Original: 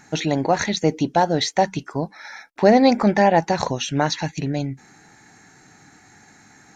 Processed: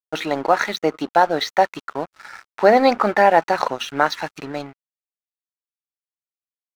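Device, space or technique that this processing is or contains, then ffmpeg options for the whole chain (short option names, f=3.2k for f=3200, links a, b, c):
pocket radio on a weak battery: -af "highpass=370,lowpass=4k,aeval=exprs='sgn(val(0))*max(abs(val(0))-0.01,0)':c=same,equalizer=f=1.3k:t=o:w=0.45:g=10,volume=2.5dB"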